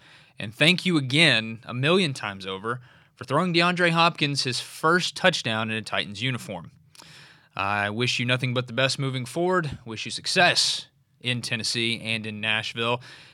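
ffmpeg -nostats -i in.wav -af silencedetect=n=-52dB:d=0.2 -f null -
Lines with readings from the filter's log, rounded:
silence_start: 10.88
silence_end: 11.21 | silence_duration: 0.33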